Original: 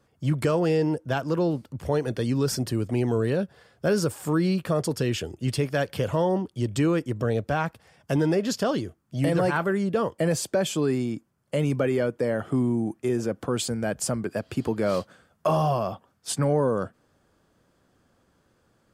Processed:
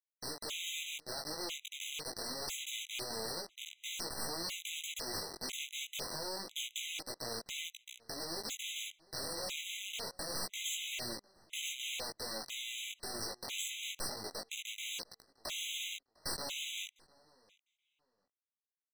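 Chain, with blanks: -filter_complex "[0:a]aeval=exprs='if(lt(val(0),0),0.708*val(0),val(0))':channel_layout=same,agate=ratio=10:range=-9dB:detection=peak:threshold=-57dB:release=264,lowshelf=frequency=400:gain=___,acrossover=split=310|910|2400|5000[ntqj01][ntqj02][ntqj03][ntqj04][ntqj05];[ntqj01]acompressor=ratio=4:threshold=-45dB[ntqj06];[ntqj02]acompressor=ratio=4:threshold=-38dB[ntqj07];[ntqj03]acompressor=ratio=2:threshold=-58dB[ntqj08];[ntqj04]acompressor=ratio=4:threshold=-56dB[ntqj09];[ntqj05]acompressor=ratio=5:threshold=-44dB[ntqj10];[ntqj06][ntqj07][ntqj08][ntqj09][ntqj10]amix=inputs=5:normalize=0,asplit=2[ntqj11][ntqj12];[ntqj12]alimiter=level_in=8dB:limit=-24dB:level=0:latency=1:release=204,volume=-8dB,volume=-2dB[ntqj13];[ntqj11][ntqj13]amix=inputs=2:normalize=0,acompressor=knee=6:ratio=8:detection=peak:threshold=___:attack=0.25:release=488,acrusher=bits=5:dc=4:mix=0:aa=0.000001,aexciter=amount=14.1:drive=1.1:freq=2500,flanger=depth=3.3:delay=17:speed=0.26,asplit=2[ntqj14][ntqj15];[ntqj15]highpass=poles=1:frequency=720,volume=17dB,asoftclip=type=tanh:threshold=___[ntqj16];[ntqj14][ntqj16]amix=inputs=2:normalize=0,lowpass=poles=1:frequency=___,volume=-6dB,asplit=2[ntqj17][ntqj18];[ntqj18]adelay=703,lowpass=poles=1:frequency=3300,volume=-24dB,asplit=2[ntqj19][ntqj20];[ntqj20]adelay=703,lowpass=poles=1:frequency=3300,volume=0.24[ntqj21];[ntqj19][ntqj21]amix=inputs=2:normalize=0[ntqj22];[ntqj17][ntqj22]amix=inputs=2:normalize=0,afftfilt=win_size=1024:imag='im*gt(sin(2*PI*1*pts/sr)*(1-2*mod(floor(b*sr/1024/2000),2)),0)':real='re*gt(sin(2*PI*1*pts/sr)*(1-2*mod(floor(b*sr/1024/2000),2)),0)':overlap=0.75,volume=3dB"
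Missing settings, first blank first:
-7.5, -39dB, -17.5dB, 1200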